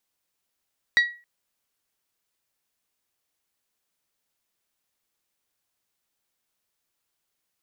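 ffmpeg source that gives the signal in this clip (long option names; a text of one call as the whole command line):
ffmpeg -f lavfi -i "aevalsrc='0.251*pow(10,-3*t/0.34)*sin(2*PI*1920*t)+0.0891*pow(10,-3*t/0.209)*sin(2*PI*3840*t)+0.0316*pow(10,-3*t/0.184)*sin(2*PI*4608*t)+0.0112*pow(10,-3*t/0.158)*sin(2*PI*5760*t)+0.00398*pow(10,-3*t/0.129)*sin(2*PI*7680*t)':duration=0.27:sample_rate=44100" out.wav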